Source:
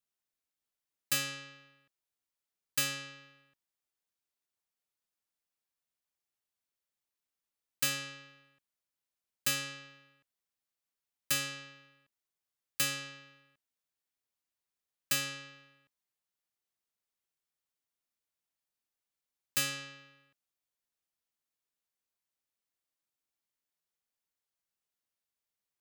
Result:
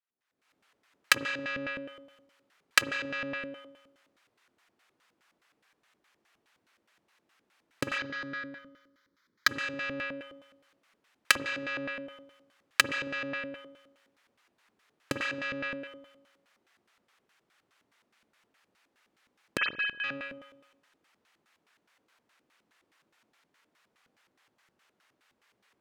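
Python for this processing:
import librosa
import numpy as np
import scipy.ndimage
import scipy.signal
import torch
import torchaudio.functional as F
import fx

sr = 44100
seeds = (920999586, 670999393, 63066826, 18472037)

y = fx.sine_speech(x, sr, at=(19.57, 20.04))
y = fx.recorder_agc(y, sr, target_db=-22.0, rise_db_per_s=59.0, max_gain_db=30)
y = fx.fixed_phaser(y, sr, hz=2700.0, stages=6, at=(7.98, 9.49))
y = fx.rev_spring(y, sr, rt60_s=1.0, pass_ms=(45, 54), chirp_ms=35, drr_db=4.5)
y = fx.filter_lfo_bandpass(y, sr, shape='square', hz=4.8, low_hz=290.0, high_hz=1600.0, q=1.1)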